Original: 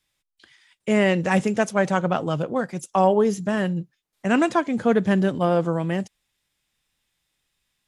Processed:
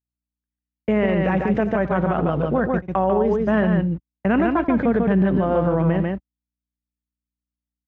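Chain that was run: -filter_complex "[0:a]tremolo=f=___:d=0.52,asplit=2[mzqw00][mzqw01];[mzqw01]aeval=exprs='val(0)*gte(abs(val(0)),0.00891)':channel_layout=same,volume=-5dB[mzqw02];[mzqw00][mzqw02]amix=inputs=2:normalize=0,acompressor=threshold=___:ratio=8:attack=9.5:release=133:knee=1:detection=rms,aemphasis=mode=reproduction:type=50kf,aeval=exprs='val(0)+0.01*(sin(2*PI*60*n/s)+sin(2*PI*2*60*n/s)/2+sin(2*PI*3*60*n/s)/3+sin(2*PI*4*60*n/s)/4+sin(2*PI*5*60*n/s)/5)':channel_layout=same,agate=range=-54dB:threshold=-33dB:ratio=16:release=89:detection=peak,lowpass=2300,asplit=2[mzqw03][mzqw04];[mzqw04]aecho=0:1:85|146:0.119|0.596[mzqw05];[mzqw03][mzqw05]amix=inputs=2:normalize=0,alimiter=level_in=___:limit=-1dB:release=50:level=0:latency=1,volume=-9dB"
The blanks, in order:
1.9, -18dB, 14dB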